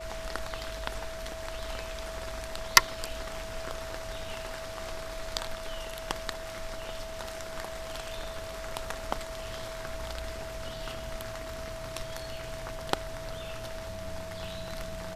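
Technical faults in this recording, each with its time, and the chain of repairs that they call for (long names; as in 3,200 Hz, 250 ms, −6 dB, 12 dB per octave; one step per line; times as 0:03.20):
whistle 650 Hz −40 dBFS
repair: notch filter 650 Hz, Q 30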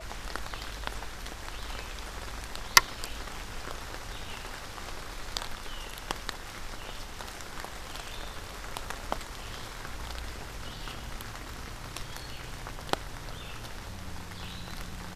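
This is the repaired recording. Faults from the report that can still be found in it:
none of them is left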